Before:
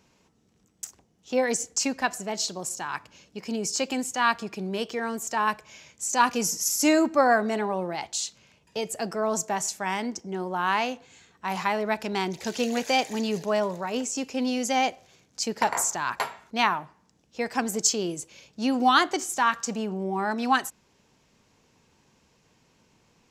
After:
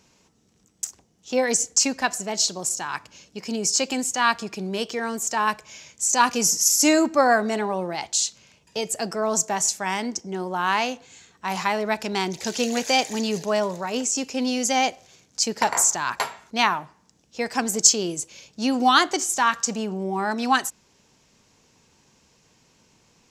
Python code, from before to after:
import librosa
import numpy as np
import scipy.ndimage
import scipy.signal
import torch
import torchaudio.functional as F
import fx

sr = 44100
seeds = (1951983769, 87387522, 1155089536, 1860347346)

y = fx.peak_eq(x, sr, hz=6500.0, db=6.0, octaves=1.5)
y = y * 10.0 ** (2.0 / 20.0)